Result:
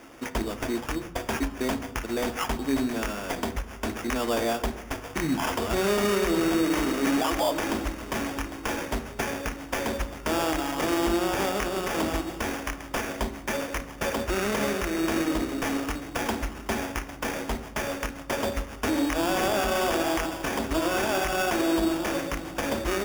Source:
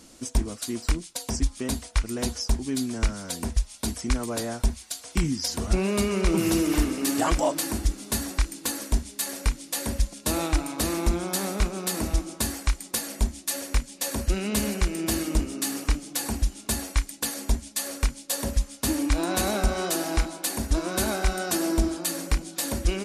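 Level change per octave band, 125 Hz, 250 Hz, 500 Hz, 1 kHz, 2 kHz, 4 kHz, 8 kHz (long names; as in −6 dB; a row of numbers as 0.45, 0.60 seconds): −7.5, +0.5, +4.0, +4.5, +4.5, −1.0, −7.0 decibels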